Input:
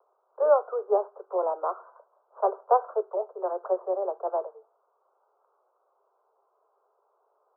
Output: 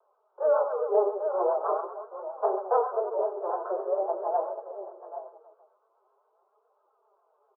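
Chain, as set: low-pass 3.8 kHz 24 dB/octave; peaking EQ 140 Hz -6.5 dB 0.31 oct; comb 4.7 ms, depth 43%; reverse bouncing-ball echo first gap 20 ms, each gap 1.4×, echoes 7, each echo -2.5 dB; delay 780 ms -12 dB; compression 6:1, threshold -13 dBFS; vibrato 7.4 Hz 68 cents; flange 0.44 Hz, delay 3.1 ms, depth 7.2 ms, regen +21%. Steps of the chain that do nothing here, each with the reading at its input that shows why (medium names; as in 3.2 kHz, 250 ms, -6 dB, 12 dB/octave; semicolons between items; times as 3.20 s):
low-pass 3.8 kHz: input has nothing above 1.4 kHz; peaking EQ 140 Hz: input has nothing below 320 Hz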